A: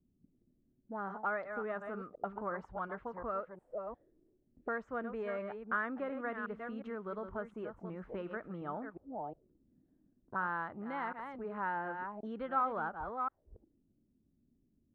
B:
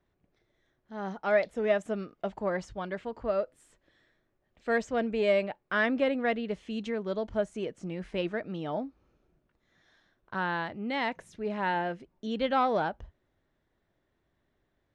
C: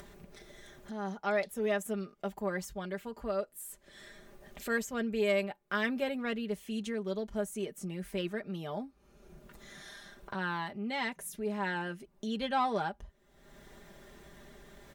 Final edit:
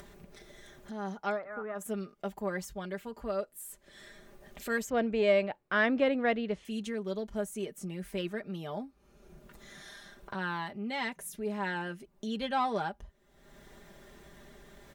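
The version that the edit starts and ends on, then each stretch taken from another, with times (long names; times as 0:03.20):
C
0:01.35–0:01.79: punch in from A, crossfade 0.10 s
0:04.90–0:06.65: punch in from B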